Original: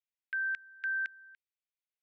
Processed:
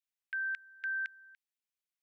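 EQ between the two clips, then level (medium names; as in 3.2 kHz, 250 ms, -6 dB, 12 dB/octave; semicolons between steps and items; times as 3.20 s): high-pass 1.4 kHz; 0.0 dB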